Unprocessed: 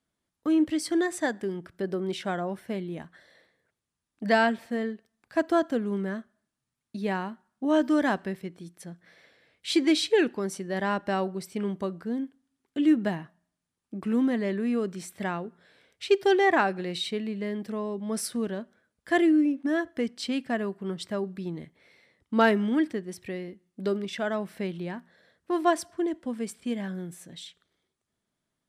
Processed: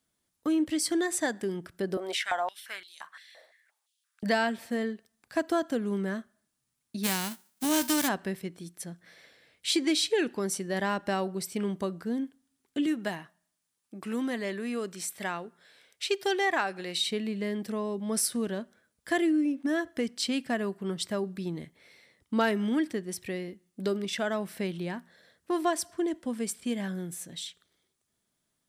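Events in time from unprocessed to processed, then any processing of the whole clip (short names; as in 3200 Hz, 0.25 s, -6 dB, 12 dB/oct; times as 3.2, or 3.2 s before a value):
1.97–4.23 stepped high-pass 5.8 Hz 630–4400 Hz
7.03–8.07 spectral whitening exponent 0.3
12.86–17.01 low shelf 380 Hz -10 dB
whole clip: high shelf 4400 Hz +10 dB; compressor 2:1, threshold -26 dBFS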